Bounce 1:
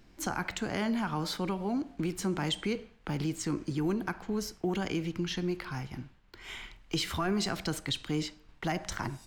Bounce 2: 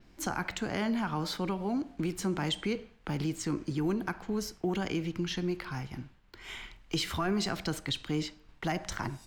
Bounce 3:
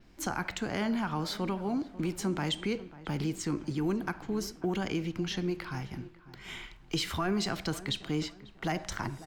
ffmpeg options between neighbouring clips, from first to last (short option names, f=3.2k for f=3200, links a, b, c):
-af "adynamicequalizer=threshold=0.00158:dfrequency=9800:dqfactor=0.88:tfrequency=9800:tqfactor=0.88:attack=5:release=100:ratio=0.375:range=2:mode=cutabove:tftype=bell"
-filter_complex "[0:a]asplit=2[a][b];[b]adelay=544,lowpass=f=1.5k:p=1,volume=-16.5dB,asplit=2[c][d];[d]adelay=544,lowpass=f=1.5k:p=1,volume=0.37,asplit=2[e][f];[f]adelay=544,lowpass=f=1.5k:p=1,volume=0.37[g];[a][c][e][g]amix=inputs=4:normalize=0"